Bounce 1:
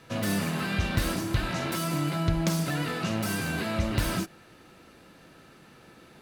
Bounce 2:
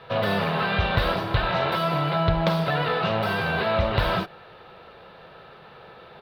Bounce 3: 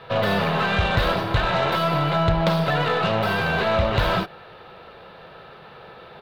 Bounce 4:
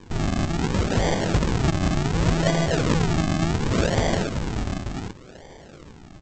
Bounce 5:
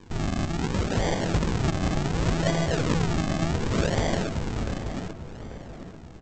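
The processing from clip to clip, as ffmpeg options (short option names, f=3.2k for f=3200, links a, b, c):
-af "firequalizer=gain_entry='entry(160,0);entry(290,-11);entry(420,7);entry(850,9);entry(2100,1);entry(3700,5);entry(6700,-25);entry(14000,-12)':delay=0.05:min_phase=1,volume=3dB"
-af "asoftclip=type=tanh:threshold=-12dB,aeval=exprs='0.237*(cos(1*acos(clip(val(0)/0.237,-1,1)))-cos(1*PI/2))+0.00596*(cos(8*acos(clip(val(0)/0.237,-1,1)))-cos(8*PI/2))':c=same,volume=3dB"
-af "aecho=1:1:579|817|877:0.473|0.237|0.398,aresample=16000,acrusher=samples=23:mix=1:aa=0.000001:lfo=1:lforange=23:lforate=0.68,aresample=44100,volume=-2dB"
-filter_complex "[0:a]asplit=2[a][b];[b]adelay=840,lowpass=f=1.9k:p=1,volume=-11dB,asplit=2[c][d];[d]adelay=840,lowpass=f=1.9k:p=1,volume=0.41,asplit=2[e][f];[f]adelay=840,lowpass=f=1.9k:p=1,volume=0.41,asplit=2[g][h];[h]adelay=840,lowpass=f=1.9k:p=1,volume=0.41[i];[a][c][e][g][i]amix=inputs=5:normalize=0,volume=-3.5dB"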